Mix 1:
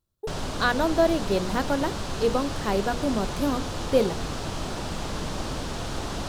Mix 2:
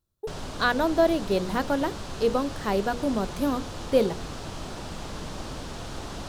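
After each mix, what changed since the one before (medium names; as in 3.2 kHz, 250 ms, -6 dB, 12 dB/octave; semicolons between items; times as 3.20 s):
background -5.0 dB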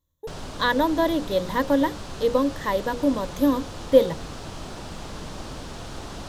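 speech: add rippled EQ curve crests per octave 1.1, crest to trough 14 dB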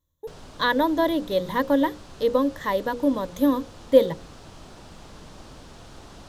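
background -8.5 dB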